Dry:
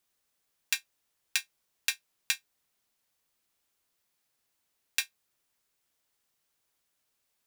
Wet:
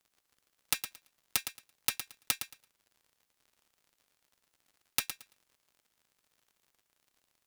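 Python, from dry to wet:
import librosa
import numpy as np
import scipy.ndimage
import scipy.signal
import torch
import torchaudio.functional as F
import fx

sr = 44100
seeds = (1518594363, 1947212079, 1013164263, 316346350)

p1 = (np.mod(10.0 ** (13.5 / 20.0) * x + 1.0, 2.0) - 1.0) / 10.0 ** (13.5 / 20.0)
p2 = fx.cheby_harmonics(p1, sr, harmonics=(3,), levels_db=(-7,), full_scale_db=-13.5)
p3 = fx.dmg_crackle(p2, sr, seeds[0], per_s=80.0, level_db=-59.0)
p4 = p3 + fx.echo_feedback(p3, sr, ms=112, feedback_pct=18, wet_db=-9.5, dry=0)
y = F.gain(torch.from_numpy(p4), 6.0).numpy()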